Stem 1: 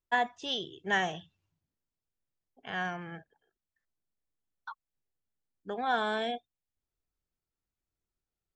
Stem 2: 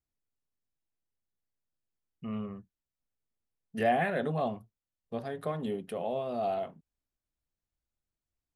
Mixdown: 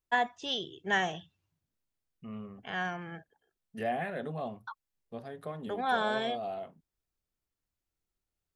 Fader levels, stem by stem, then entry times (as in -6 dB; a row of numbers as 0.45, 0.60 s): 0.0, -6.0 dB; 0.00, 0.00 s